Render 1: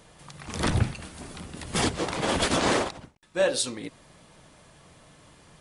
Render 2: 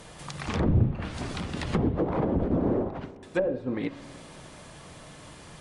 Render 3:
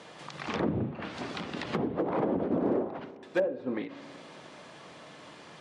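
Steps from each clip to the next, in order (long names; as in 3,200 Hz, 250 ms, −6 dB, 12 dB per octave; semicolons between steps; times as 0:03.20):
soft clipping −22 dBFS, distortion −11 dB; treble cut that deepens with the level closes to 390 Hz, closed at −26 dBFS; spring reverb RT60 3 s, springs 32/57 ms, chirp 65 ms, DRR 16.5 dB; level +7 dB
band-pass filter 230–4,900 Hz; hard clipping −19 dBFS, distortion −30 dB; every ending faded ahead of time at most 110 dB per second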